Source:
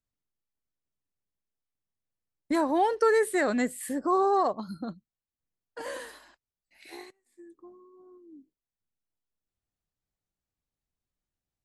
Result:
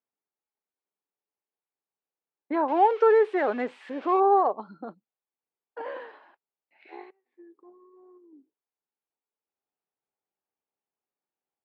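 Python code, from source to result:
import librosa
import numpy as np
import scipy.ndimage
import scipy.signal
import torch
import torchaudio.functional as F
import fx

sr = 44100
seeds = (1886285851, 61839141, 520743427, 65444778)

y = fx.crossing_spikes(x, sr, level_db=-21.5, at=(2.68, 4.2))
y = fx.transient(y, sr, attack_db=-11, sustain_db=-7, at=(7.6, 8.33))
y = fx.cabinet(y, sr, low_hz=330.0, low_slope=12, high_hz=2600.0, hz=(420.0, 840.0, 1900.0), db=(6, 7, -4))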